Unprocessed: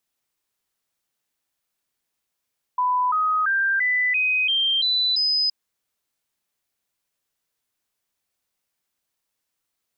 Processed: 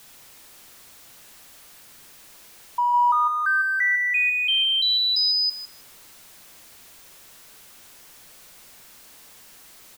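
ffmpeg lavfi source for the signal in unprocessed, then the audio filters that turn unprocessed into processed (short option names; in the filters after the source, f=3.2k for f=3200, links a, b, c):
-f lavfi -i "aevalsrc='0.126*clip(min(mod(t,0.34),0.34-mod(t,0.34))/0.005,0,1)*sin(2*PI*997*pow(2,floor(t/0.34)/3)*mod(t,0.34))':d=2.72:s=44100"
-filter_complex "[0:a]aeval=exprs='val(0)+0.5*0.0075*sgn(val(0))':c=same,afreqshift=-29,asplit=2[a][b];[b]adelay=156,lowpass=f=2.6k:p=1,volume=-7.5dB,asplit=2[c][d];[d]adelay=156,lowpass=f=2.6k:p=1,volume=0.26,asplit=2[e][f];[f]adelay=156,lowpass=f=2.6k:p=1,volume=0.26[g];[c][e][g]amix=inputs=3:normalize=0[h];[a][h]amix=inputs=2:normalize=0"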